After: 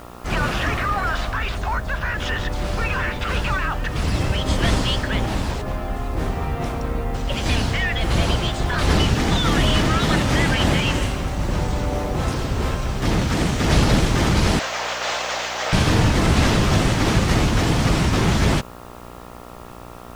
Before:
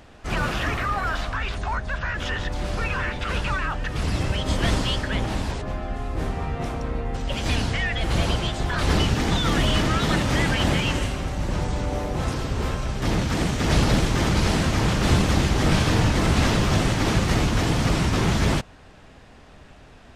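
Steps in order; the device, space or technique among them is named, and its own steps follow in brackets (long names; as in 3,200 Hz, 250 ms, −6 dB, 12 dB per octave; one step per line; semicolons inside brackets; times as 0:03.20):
0:14.59–0:15.73: elliptic band-pass filter 570–6,900 Hz
video cassette with head-switching buzz (hum with harmonics 60 Hz, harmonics 23, −43 dBFS −1 dB per octave; white noise bed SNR 33 dB)
level +3 dB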